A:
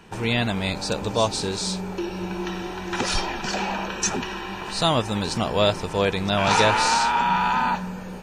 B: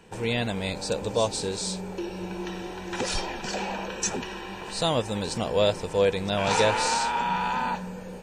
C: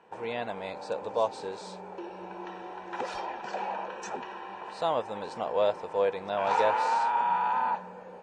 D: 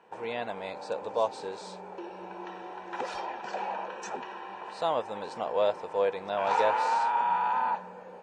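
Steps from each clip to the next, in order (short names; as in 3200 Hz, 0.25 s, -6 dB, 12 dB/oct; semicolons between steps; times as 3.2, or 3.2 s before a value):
thirty-one-band EQ 500 Hz +8 dB, 1250 Hz -5 dB, 8000 Hz +6 dB; gain -5 dB
band-pass 880 Hz, Q 1.3; gain +1 dB
low shelf 160 Hz -5 dB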